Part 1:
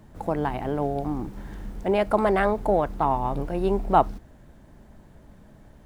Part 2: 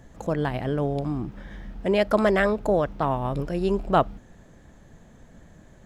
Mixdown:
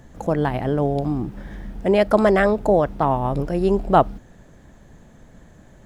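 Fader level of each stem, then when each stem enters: -5.0 dB, +2.0 dB; 0.00 s, 0.00 s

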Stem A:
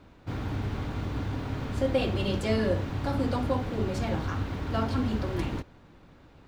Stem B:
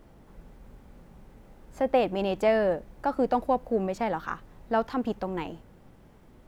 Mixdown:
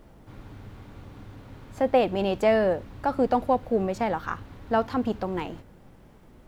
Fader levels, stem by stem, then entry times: -13.0 dB, +2.0 dB; 0.00 s, 0.00 s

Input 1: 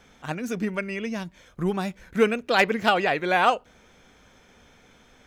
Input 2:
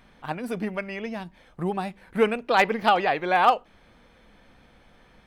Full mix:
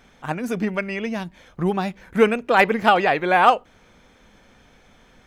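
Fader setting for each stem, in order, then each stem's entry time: -2.0 dB, 0.0 dB; 0.00 s, 0.00 s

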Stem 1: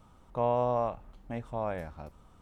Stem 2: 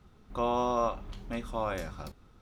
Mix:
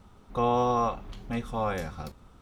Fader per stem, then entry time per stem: +0.5 dB, +1.5 dB; 0.00 s, 0.00 s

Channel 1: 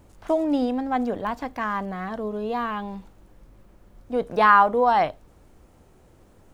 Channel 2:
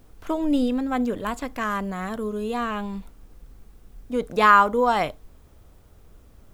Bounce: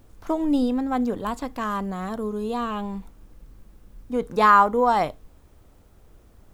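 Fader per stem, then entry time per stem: -7.0 dB, -2.5 dB; 0.00 s, 0.00 s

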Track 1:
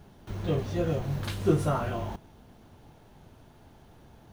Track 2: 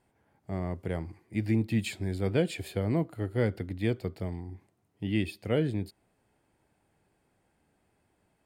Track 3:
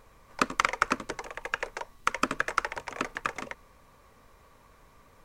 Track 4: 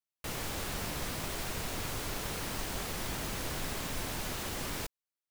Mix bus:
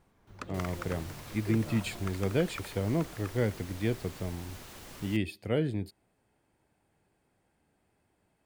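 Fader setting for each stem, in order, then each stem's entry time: -17.0 dB, -1.5 dB, -17.0 dB, -10.5 dB; 0.00 s, 0.00 s, 0.00 s, 0.30 s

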